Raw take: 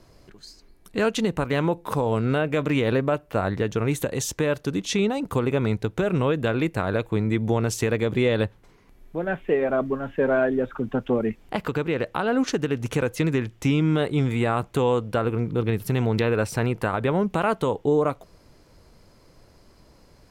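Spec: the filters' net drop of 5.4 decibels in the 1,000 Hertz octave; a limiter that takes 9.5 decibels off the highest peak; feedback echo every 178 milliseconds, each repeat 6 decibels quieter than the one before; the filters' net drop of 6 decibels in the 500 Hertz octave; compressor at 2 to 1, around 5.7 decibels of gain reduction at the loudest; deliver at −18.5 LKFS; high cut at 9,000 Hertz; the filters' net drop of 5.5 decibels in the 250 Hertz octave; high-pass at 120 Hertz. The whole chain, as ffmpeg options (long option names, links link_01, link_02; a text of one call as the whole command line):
ffmpeg -i in.wav -af "highpass=120,lowpass=9000,equalizer=frequency=250:width_type=o:gain=-5,equalizer=frequency=500:width_type=o:gain=-4.5,equalizer=frequency=1000:width_type=o:gain=-5.5,acompressor=threshold=-33dB:ratio=2,alimiter=level_in=1.5dB:limit=-24dB:level=0:latency=1,volume=-1.5dB,aecho=1:1:178|356|534|712|890|1068:0.501|0.251|0.125|0.0626|0.0313|0.0157,volume=16.5dB" out.wav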